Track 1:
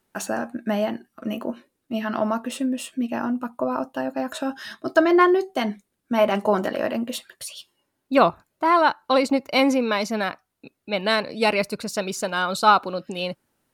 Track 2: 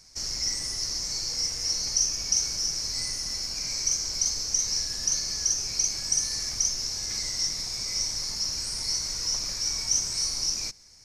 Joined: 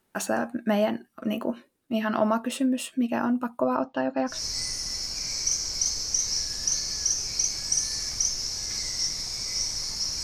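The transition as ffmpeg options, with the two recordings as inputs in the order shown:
ffmpeg -i cue0.wav -i cue1.wav -filter_complex "[0:a]asettb=1/sr,asplit=3[link_01][link_02][link_03];[link_01]atrim=end=3.764[link_04];[link_02]atrim=start=3.76:end=4.42,asetpts=PTS-STARTPTS,afade=type=in:duration=0.004:curve=qsin,afade=type=out:start_time=0.656:duration=0.004:curve=qsin,lowpass=frequency=5200:width=0.5412,lowpass=frequency=5200:width=1.3066[link_05];[link_03]atrim=start=4.416[link_06];[link_04][link_05]acrossfade=duration=0.004:curve1=hsin:curve2=qsin[link_07];[link_07][link_06]acrossfade=duration=0.004:curve1=qsin:curve2=hsin,apad=whole_dur=10.23,atrim=end=10.23,atrim=end=4.42,asetpts=PTS-STARTPTS[link_08];[1:a]atrim=start=2.66:end=8.63,asetpts=PTS-STARTPTS[link_09];[link_08][link_09]acrossfade=duration=0.16:curve1=tri:curve2=tri" out.wav

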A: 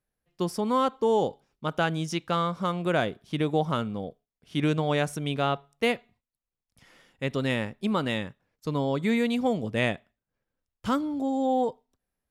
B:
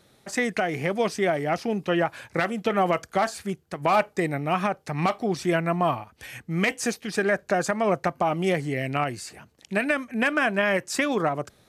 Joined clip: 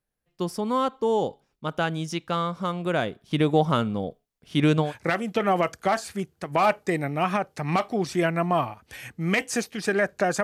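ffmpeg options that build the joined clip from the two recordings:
ffmpeg -i cue0.wav -i cue1.wav -filter_complex "[0:a]asettb=1/sr,asplit=3[link_01][link_02][link_03];[link_01]atrim=end=3.314[link_04];[link_02]atrim=start=3.31:end=4.93,asetpts=PTS-STARTPTS,afade=type=in:duration=0.004:curve=qsin,afade=type=out:start_time=1.616:duration=0.004:curve=qsin,acontrast=24[link_05];[link_03]atrim=start=4.926[link_06];[link_04][link_05]acrossfade=duration=0.004:curve1=hsin:curve2=qsin[link_07];[link_07][link_06]acrossfade=duration=0.004:curve1=qsin:curve2=hsin,apad=whole_dur=10.43,atrim=end=10.43,atrim=end=4.93,asetpts=PTS-STARTPTS[link_08];[1:a]atrim=start=2.11:end=7.73,asetpts=PTS-STARTPTS[link_09];[link_08][link_09]acrossfade=duration=0.12:curve1=tri:curve2=tri" out.wav

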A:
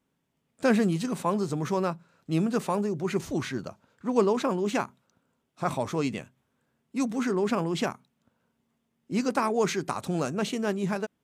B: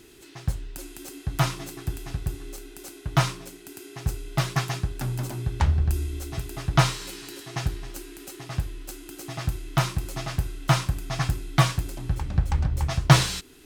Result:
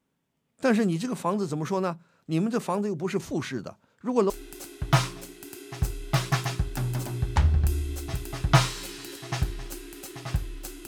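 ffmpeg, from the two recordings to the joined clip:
ffmpeg -i cue0.wav -i cue1.wav -filter_complex "[0:a]apad=whole_dur=10.87,atrim=end=10.87,atrim=end=4.302[link_01];[1:a]atrim=start=2.538:end=9.11[link_02];[link_01][link_02]acrossfade=duration=0.004:curve1=hsin:curve2=hsin" out.wav

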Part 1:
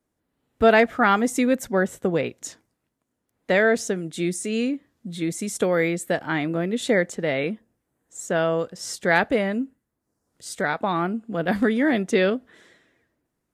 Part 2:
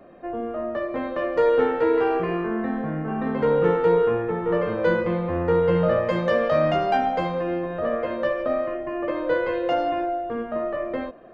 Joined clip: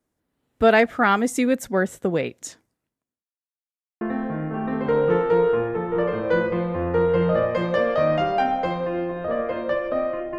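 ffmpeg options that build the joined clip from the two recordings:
ffmpeg -i cue0.wav -i cue1.wav -filter_complex "[0:a]apad=whole_dur=10.38,atrim=end=10.38,asplit=2[link_01][link_02];[link_01]atrim=end=3.25,asetpts=PTS-STARTPTS,afade=type=out:start_time=2.56:duration=0.69[link_03];[link_02]atrim=start=3.25:end=4.01,asetpts=PTS-STARTPTS,volume=0[link_04];[1:a]atrim=start=2.55:end=8.92,asetpts=PTS-STARTPTS,afade=type=in:duration=0.004:curve=hsin[link_05];[link_03][link_04][link_05]concat=n=3:v=0:a=1" out.wav

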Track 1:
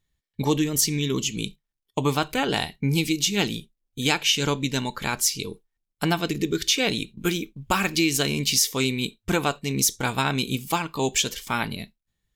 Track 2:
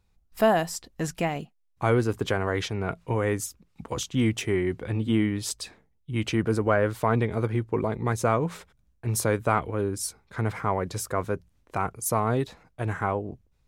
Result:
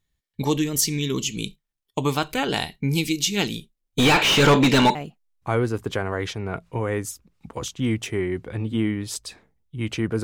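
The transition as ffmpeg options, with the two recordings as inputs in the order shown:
ffmpeg -i cue0.wav -i cue1.wav -filter_complex "[0:a]asettb=1/sr,asplit=3[link_01][link_02][link_03];[link_01]atrim=end=3.984[link_04];[link_02]atrim=start=3.98:end=4.95,asetpts=PTS-STARTPTS,afade=type=in:duration=0.004:curve=qsin,afade=type=out:start_time=0.966:duration=0.004:curve=qsin,asplit=2[link_05][link_06];[link_06]highpass=frequency=720:poles=1,volume=33dB,asoftclip=type=tanh:threshold=-5.5dB[link_07];[link_05][link_07]amix=inputs=2:normalize=0,lowpass=frequency=1500:poles=1,volume=-6dB[link_08];[link_03]atrim=start=4.946[link_09];[link_04][link_08]acrossfade=duration=0.004:curve1=hsin:curve2=qsin[link_10];[link_10][link_09]acrossfade=duration=0.004:curve1=qsin:curve2=hsin,apad=whole_dur=10.23,atrim=end=10.23,atrim=end=4.952[link_11];[1:a]atrim=start=1.298:end=6.58[link_12];[link_11][link_12]acrossfade=duration=0.004:curve1=hsin:curve2=hsin" out.wav

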